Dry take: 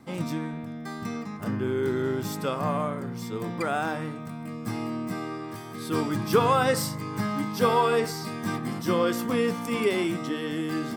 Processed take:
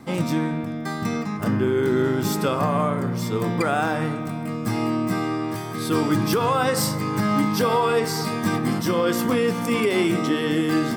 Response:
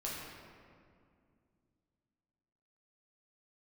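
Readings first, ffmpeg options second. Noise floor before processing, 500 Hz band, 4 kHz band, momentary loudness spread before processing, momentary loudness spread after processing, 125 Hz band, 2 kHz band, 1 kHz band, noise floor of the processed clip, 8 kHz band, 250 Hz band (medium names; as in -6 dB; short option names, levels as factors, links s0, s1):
-37 dBFS, +4.0 dB, +5.5 dB, 12 LU, 6 LU, +6.5 dB, +5.0 dB, +3.5 dB, -29 dBFS, +6.5 dB, +6.5 dB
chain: -filter_complex "[0:a]alimiter=limit=0.1:level=0:latency=1:release=161,asplit=2[s0][s1];[1:a]atrim=start_sample=2205[s2];[s1][s2]afir=irnorm=-1:irlink=0,volume=0.224[s3];[s0][s3]amix=inputs=2:normalize=0,volume=2.24"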